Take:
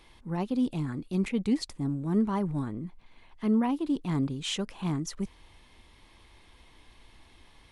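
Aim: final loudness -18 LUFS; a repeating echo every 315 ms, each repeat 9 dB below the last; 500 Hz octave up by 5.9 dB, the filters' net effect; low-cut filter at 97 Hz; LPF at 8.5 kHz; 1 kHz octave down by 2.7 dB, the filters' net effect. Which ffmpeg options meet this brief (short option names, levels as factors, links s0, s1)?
-af "highpass=97,lowpass=8500,equalizer=f=500:t=o:g=9,equalizer=f=1000:t=o:g=-7,aecho=1:1:315|630|945|1260:0.355|0.124|0.0435|0.0152,volume=3.35"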